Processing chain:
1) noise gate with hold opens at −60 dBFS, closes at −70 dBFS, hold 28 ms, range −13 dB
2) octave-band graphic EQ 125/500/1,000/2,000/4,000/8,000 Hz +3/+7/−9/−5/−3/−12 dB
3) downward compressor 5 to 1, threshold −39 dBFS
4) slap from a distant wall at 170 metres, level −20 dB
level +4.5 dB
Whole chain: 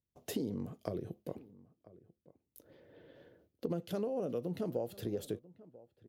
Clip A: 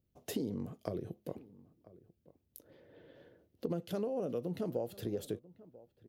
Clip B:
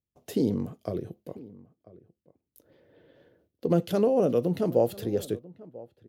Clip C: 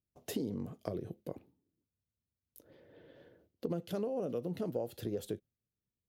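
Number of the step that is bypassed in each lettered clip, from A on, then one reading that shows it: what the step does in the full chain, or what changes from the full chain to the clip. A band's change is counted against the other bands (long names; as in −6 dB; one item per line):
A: 1, change in momentary loudness spread +5 LU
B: 3, average gain reduction 9.0 dB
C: 4, echo-to-direct ratio −23.0 dB to none audible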